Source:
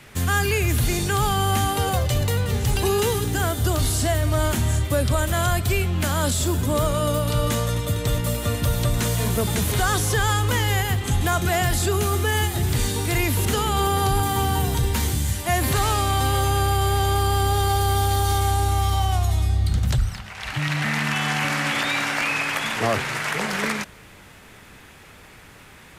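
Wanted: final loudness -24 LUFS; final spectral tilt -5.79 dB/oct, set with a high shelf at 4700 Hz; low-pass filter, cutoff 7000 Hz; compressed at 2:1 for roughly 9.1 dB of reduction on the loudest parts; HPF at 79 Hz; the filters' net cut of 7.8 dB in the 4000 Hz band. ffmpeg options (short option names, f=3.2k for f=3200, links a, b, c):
-af "highpass=79,lowpass=7k,equalizer=f=4k:t=o:g=-8,highshelf=f=4.7k:g=-5,acompressor=threshold=-36dB:ratio=2,volume=8.5dB"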